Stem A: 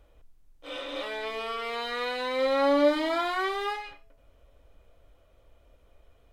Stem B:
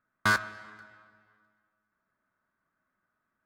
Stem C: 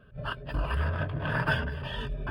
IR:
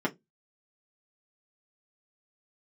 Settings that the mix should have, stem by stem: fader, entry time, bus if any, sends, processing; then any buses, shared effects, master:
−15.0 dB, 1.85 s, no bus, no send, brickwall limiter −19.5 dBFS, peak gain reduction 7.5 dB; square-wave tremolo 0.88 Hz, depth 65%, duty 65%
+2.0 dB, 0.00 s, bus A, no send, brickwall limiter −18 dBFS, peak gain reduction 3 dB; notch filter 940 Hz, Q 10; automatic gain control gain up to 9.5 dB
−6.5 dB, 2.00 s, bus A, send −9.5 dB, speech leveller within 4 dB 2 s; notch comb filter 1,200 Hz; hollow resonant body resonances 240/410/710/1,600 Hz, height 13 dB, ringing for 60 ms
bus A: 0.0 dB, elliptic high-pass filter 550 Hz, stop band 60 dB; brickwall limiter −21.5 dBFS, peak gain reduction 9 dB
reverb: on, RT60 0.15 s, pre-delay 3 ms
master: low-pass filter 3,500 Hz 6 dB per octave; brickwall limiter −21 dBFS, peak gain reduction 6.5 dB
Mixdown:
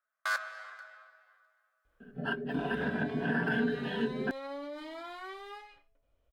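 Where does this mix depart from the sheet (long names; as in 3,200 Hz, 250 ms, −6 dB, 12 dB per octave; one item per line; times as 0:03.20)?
stem A: missing square-wave tremolo 0.88 Hz, depth 65%, duty 65%
stem B +2.0 dB → −6.5 dB
master: missing low-pass filter 3,500 Hz 6 dB per octave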